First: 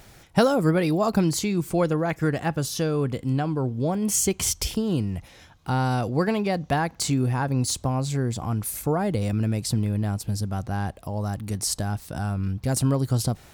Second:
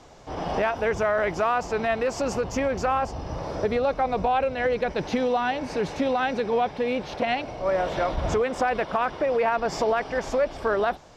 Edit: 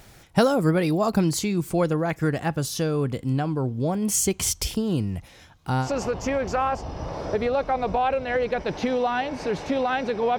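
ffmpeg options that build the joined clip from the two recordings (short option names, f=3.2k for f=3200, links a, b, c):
-filter_complex "[0:a]apad=whole_dur=10.38,atrim=end=10.38,atrim=end=5.9,asetpts=PTS-STARTPTS[a];[1:a]atrim=start=2.1:end=6.68,asetpts=PTS-STARTPTS[b];[a][b]acrossfade=d=0.1:c1=tri:c2=tri"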